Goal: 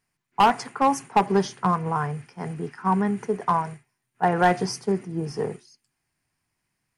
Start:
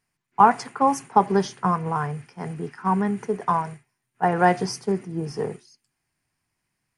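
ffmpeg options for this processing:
ffmpeg -i in.wav -af "asoftclip=type=hard:threshold=-11.5dB" out.wav

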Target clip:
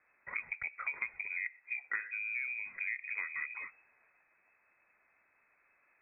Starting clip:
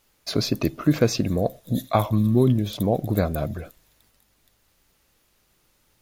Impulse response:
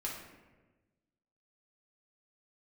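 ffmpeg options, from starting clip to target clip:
-af "equalizer=frequency=780:width=0.64:gain=9,acompressor=threshold=-28dB:ratio=6,lowpass=frequency=2200:width_type=q:width=0.5098,lowpass=frequency=2200:width_type=q:width=0.6013,lowpass=frequency=2200:width_type=q:width=0.9,lowpass=frequency=2200:width_type=q:width=2.563,afreqshift=-2600,aemphasis=mode=reproduction:type=50fm,volume=-6.5dB"

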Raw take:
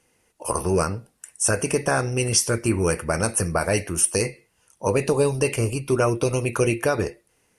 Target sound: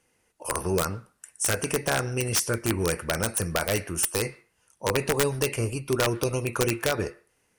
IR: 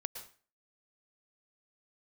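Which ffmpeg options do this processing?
-filter_complex "[0:a]aeval=exprs='(mod(3.35*val(0)+1,2)-1)/3.35':channel_layout=same,asplit=2[link_01][link_02];[link_02]bandpass=frequency=1500:width_type=q:width=1.7:csg=0[link_03];[1:a]atrim=start_sample=2205[link_04];[link_03][link_04]afir=irnorm=-1:irlink=0,volume=-9dB[link_05];[link_01][link_05]amix=inputs=2:normalize=0,volume=-4.5dB"

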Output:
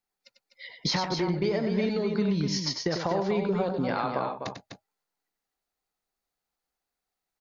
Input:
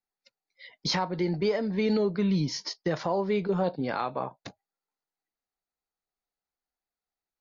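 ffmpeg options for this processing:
ffmpeg -i in.wav -af "acompressor=threshold=-29dB:ratio=6,aecho=1:1:96.21|250.7:0.447|0.447,volume=4.5dB" out.wav

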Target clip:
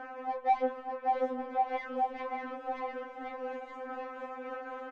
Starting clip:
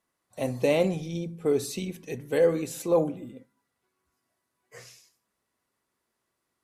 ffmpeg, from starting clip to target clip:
ffmpeg -i in.wav -filter_complex "[0:a]aeval=exprs='val(0)+0.5*0.0335*sgn(val(0))':channel_layout=same,aecho=1:1:5.4:0.49,acrossover=split=380|5400[link_01][link_02][link_03];[link_01]acompressor=threshold=-38dB:ratio=6[link_04];[link_04][link_02][link_03]amix=inputs=3:normalize=0,acrossover=split=230 3000:gain=0.141 1 0.1[link_05][link_06][link_07];[link_05][link_06][link_07]amix=inputs=3:normalize=0,asetrate=59535,aresample=44100,aecho=1:1:590|1092|1518|1880|2188:0.631|0.398|0.251|0.158|0.1,tremolo=f=4:d=0.28,asoftclip=type=hard:threshold=-28dB,adynamicsmooth=sensitivity=0.5:basefreq=1200,afftfilt=real='re*3.46*eq(mod(b,12),0)':imag='im*3.46*eq(mod(b,12),0)':win_size=2048:overlap=0.75,volume=2dB" out.wav

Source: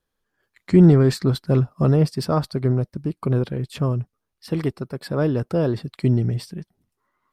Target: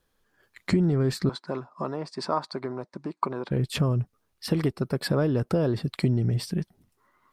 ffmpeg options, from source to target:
ffmpeg -i in.wav -filter_complex "[0:a]acompressor=threshold=-28dB:ratio=6,asettb=1/sr,asplit=3[link_01][link_02][link_03];[link_01]atrim=end=1.294[link_04];[link_02]atrim=start=1.29:end=3.51,asetpts=PTS-STARTPTS,afade=type=in:duration=0.004:curve=qsin,afade=type=out:start_time=2.216:duration=0.004:curve=qsin,highpass=370,equalizer=frequency=470:width_type=q:width=4:gain=-5,equalizer=frequency=980:width_type=q:width=4:gain=9,equalizer=frequency=3000:width_type=q:width=4:gain=-8,equalizer=frequency=5500:width_type=q:width=4:gain=-5,lowpass=frequency=7200:width=0.5412,lowpass=frequency=7200:width=1.3066[link_05];[link_03]atrim=start=3.506[link_06];[link_04][link_05]acrossfade=duration=0.004:curve1=hsin:curve2=qsin[link_07];[link_07][link_06]acrossfade=duration=0.004:curve1=qsin:curve2=hsin,volume=6.5dB" out.wav

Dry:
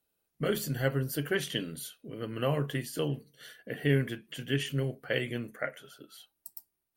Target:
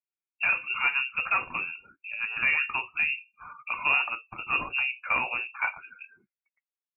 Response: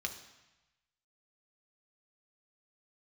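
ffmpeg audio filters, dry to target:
-filter_complex "[0:a]asplit=2[link_01][link_02];[link_02]highpass=frequency=720:poles=1,volume=18dB,asoftclip=type=tanh:threshold=-13dB[link_03];[link_01][link_03]amix=inputs=2:normalize=0,lowpass=frequency=1800:poles=1,volume=-6dB,afftdn=noise_reduction=28:noise_floor=-46,lowpass=frequency=2500:width_type=q:width=0.5098,lowpass=frequency=2500:width_type=q:width=0.6013,lowpass=frequency=2500:width_type=q:width=0.9,lowpass=frequency=2500:width_type=q:width=2.563,afreqshift=-2900"

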